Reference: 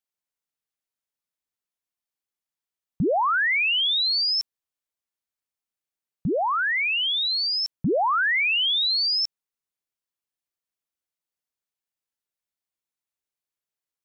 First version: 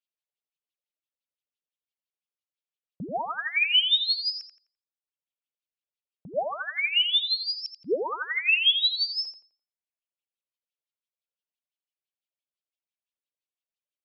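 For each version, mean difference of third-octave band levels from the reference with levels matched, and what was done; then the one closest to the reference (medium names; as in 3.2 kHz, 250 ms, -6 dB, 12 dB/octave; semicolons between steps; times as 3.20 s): 5.0 dB: reverb removal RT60 0.84 s; high-order bell 1.2 kHz -11 dB; wah-wah 5.9 Hz 580–3400 Hz, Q 2.5; filtered feedback delay 85 ms, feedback 35%, low-pass 4.2 kHz, level -6 dB; trim +6 dB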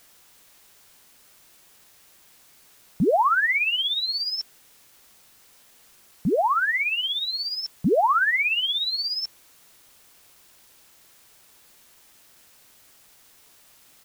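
8.0 dB: high-pass 1.1 kHz 6 dB/octave; tilt EQ -4.5 dB/octave; comb 4.5 ms, depth 42%; word length cut 10-bit, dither triangular; trim +5 dB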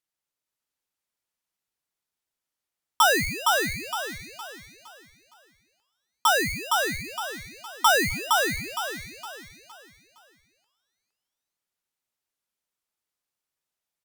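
27.0 dB: low-pass that closes with the level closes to 680 Hz; peaking EQ 160 Hz +4 dB 2.1 oct; feedback delay 463 ms, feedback 36%, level -3 dB; polarity switched at an audio rate 1.1 kHz; trim +2 dB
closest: first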